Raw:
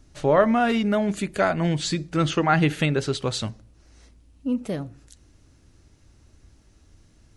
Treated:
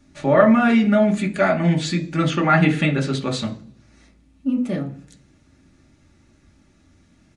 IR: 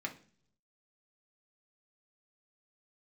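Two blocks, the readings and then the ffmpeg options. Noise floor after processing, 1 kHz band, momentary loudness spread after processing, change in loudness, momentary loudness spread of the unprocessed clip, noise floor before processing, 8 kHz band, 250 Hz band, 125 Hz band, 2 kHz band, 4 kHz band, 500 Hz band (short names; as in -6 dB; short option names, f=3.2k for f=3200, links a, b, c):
-57 dBFS, +2.5 dB, 13 LU, +4.5 dB, 12 LU, -57 dBFS, -1.5 dB, +6.0 dB, +4.0 dB, +4.5 dB, +0.5 dB, +3.5 dB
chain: -filter_complex "[1:a]atrim=start_sample=2205[a];[0:a][a]afir=irnorm=-1:irlink=0,aresample=22050,aresample=44100,volume=2.5dB"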